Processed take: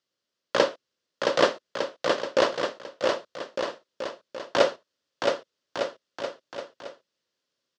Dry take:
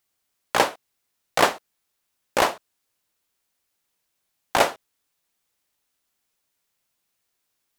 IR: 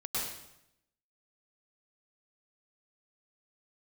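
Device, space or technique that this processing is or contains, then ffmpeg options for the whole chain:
kitchen radio: -af "bass=f=250:g=6,treble=f=4000:g=12,highpass=170,equalizer=f=180:t=q:w=4:g=-3,equalizer=f=360:t=q:w=4:g=3,equalizer=f=540:t=q:w=4:g=10,equalizer=f=790:t=q:w=4:g=-10,equalizer=f=2300:t=q:w=4:g=-7,equalizer=f=3900:t=q:w=4:g=-4,lowpass=f=4400:w=0.5412,lowpass=f=4400:w=1.3066,aecho=1:1:670|1206|1635|1978|2252:0.631|0.398|0.251|0.158|0.1,volume=0.668"

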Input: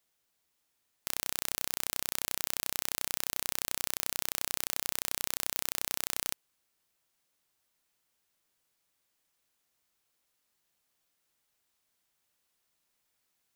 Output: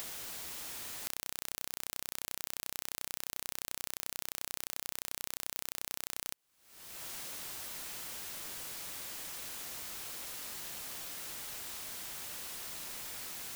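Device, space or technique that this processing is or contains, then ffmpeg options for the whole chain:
upward and downward compression: -af "acompressor=mode=upward:threshold=0.00891:ratio=2.5,acompressor=threshold=0.002:ratio=4,volume=6.31"

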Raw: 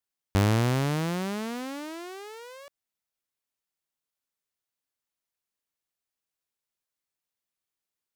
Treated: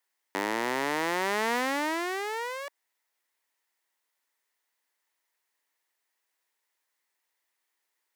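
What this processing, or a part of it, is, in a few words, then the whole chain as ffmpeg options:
laptop speaker: -af "highpass=f=300:w=0.5412,highpass=f=300:w=1.3066,equalizer=f=930:t=o:w=0.33:g=7.5,equalizer=f=1900:t=o:w=0.41:g=10,alimiter=limit=0.0708:level=0:latency=1:release=13,volume=2.24"

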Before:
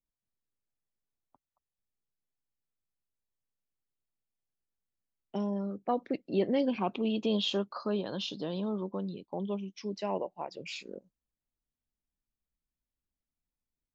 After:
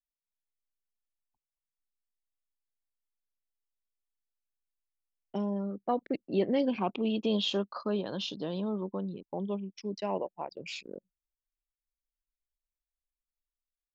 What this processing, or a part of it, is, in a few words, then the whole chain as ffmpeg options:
voice memo with heavy noise removal: -af "anlmdn=0.0251,dynaudnorm=f=120:g=7:m=2.51,volume=0.422"

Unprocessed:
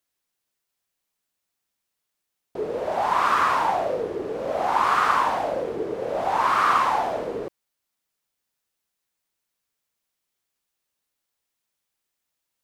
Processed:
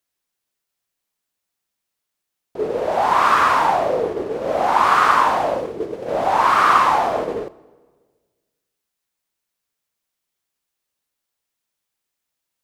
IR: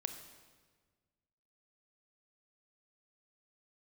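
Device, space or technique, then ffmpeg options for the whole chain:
keyed gated reverb: -filter_complex "[0:a]asplit=3[s0][s1][s2];[s0]afade=t=out:st=5.54:d=0.02[s3];[s1]equalizer=f=1100:w=0.56:g=-5.5,afade=t=in:st=5.54:d=0.02,afade=t=out:st=6.06:d=0.02[s4];[s2]afade=t=in:st=6.06:d=0.02[s5];[s3][s4][s5]amix=inputs=3:normalize=0,asplit=3[s6][s7][s8];[1:a]atrim=start_sample=2205[s9];[s7][s9]afir=irnorm=-1:irlink=0[s10];[s8]apad=whole_len=557080[s11];[s10][s11]sidechaingate=range=0.316:threshold=0.0355:ratio=16:detection=peak,volume=2.11[s12];[s6][s12]amix=inputs=2:normalize=0,volume=0.668"

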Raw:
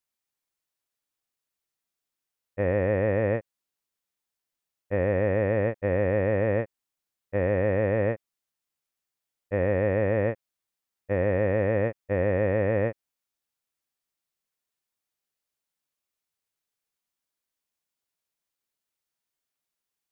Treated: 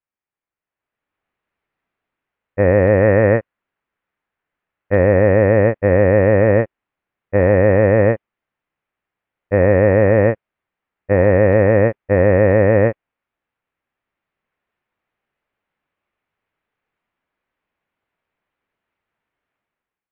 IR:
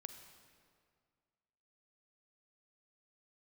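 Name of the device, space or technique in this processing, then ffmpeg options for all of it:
action camera in a waterproof case: -filter_complex "[0:a]asplit=3[s0][s1][s2];[s0]afade=t=out:st=3:d=0.02[s3];[s1]equalizer=f=1500:t=o:w=0.87:g=3,afade=t=in:st=3:d=0.02,afade=t=out:st=4.96:d=0.02[s4];[s2]afade=t=in:st=4.96:d=0.02[s5];[s3][s4][s5]amix=inputs=3:normalize=0,lowpass=f=2400:w=0.5412,lowpass=f=2400:w=1.3066,dynaudnorm=f=630:g=3:m=5.62" -ar 32000 -c:a aac -b:a 64k

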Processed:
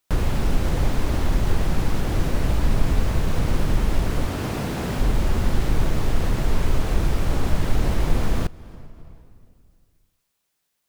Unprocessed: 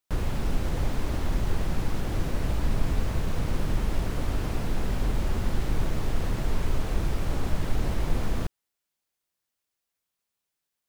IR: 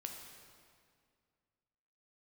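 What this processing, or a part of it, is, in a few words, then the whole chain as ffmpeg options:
compressed reverb return: -filter_complex "[0:a]asettb=1/sr,asplit=3[s0][s1][s2];[s0]atrim=end=4.274[s3];[s1]atrim=start=4.27:end=4.99,asetpts=PTS-STARTPTS,afade=t=in:d=0.004:c=qsin,afade=t=out:st=0.716:d=0.004:c=qsin,highpass=96[s4];[s2]atrim=start=4.986[s5];[s3][s4]acrossfade=d=0.004:c1=hsin:c2=qsin[s6];[s6][s5]acrossfade=d=0.004:c1=qsin:c2=hsin,asplit=2[s7][s8];[1:a]atrim=start_sample=2205[s9];[s8][s9]afir=irnorm=-1:irlink=0,acompressor=threshold=0.0126:ratio=12,volume=0.944[s10];[s7][s10]amix=inputs=2:normalize=0,volume=1.78"

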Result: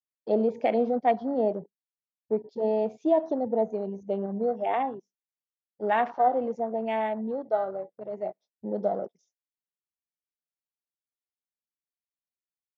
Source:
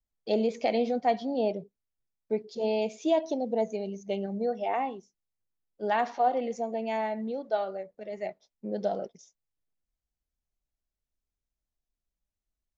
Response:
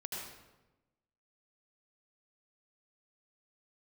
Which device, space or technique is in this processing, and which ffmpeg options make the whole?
over-cleaned archive recording: -af "highpass=140,lowpass=5800,afwtdn=0.00891,volume=1.33"

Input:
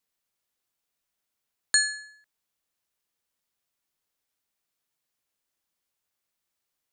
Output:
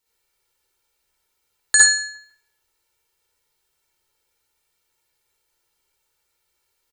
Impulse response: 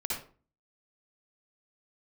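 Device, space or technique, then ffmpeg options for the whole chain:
microphone above a desk: -filter_complex "[0:a]aecho=1:1:2.2:0.67,asplit=2[s0][s1];[s1]adelay=174,lowpass=f=3200:p=1,volume=0.0668,asplit=2[s2][s3];[s3]adelay=174,lowpass=f=3200:p=1,volume=0.3[s4];[s0][s2][s4]amix=inputs=3:normalize=0[s5];[1:a]atrim=start_sample=2205[s6];[s5][s6]afir=irnorm=-1:irlink=0,volume=1.88"

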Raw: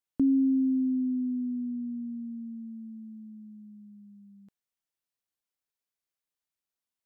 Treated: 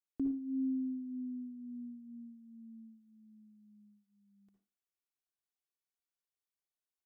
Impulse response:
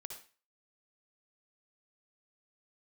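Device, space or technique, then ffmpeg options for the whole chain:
microphone above a desk: -filter_complex "[0:a]aecho=1:1:2.7:0.54[s0];[1:a]atrim=start_sample=2205[s1];[s0][s1]afir=irnorm=-1:irlink=0,volume=0.562"

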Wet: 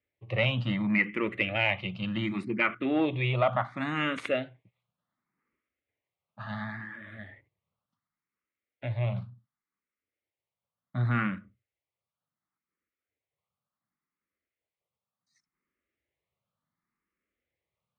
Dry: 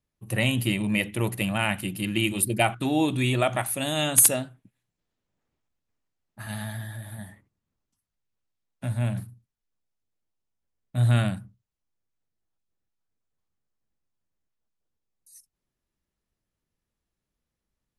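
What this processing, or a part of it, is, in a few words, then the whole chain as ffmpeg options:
barber-pole phaser into a guitar amplifier: -filter_complex "[0:a]asettb=1/sr,asplit=3[s0][s1][s2];[s0]atrim=end=2.504[s3];[s1]atrim=start=2.5:end=3.77,asetpts=PTS-STARTPTS,afade=t=in:d=0.004:c=qsin,afade=t=out:st=1.266:d=0.004:c=qsin,highshelf=f=3400:g=-9.5[s4];[s2]atrim=start=3.766[s5];[s3][s4]acrossfade=d=0.004:c1=hsin:c2=qsin[s6];[s6][s5]acrossfade=d=0.004:c1=qsin:c2=hsin,asplit=2[s7][s8];[s8]afreqshift=0.69[s9];[s7][s9]amix=inputs=2:normalize=1,asoftclip=type=tanh:threshold=0.133,highpass=100,equalizer=f=550:t=q:w=4:g=4,equalizer=f=1200:t=q:w=4:g=9,equalizer=f=2100:t=q:w=4:g=10,lowpass=f=3700:w=0.5412,lowpass=f=3700:w=1.3066"

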